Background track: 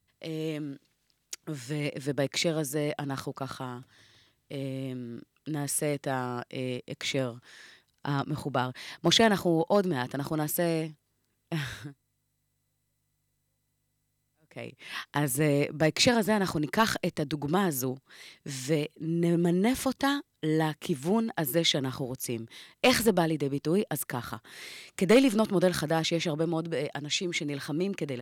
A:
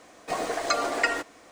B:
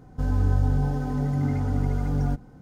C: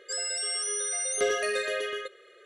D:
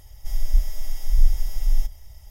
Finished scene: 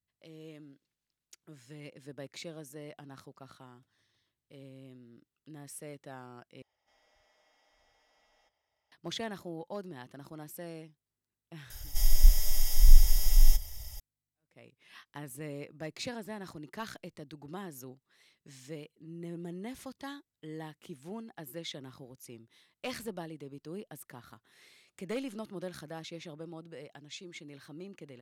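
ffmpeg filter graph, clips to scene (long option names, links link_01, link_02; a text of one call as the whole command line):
ffmpeg -i bed.wav -i cue0.wav -i cue1.wav -i cue2.wav -i cue3.wav -filter_complex "[4:a]asplit=2[link_01][link_02];[0:a]volume=-16dB[link_03];[link_01]highpass=450,lowpass=2800[link_04];[link_02]highshelf=frequency=2700:gain=11[link_05];[link_03]asplit=2[link_06][link_07];[link_06]atrim=end=6.624[link_08];[link_04]atrim=end=2.3,asetpts=PTS-STARTPTS,volume=-17dB[link_09];[link_07]atrim=start=8.916[link_10];[link_05]atrim=end=2.3,asetpts=PTS-STARTPTS,volume=-0.5dB,afade=type=in:duration=0.004:curve=hsin,afade=type=out:start_time=2.296:duration=0.004:curve=hsin,adelay=515970S[link_11];[link_08][link_09]acrossfade=duration=0.004:curve1=hsin:curve2=hsin[link_12];[link_12][link_10]acrossfade=duration=0.004:curve1=hsin:curve2=hsin[link_13];[link_13][link_11]amix=inputs=2:normalize=0" out.wav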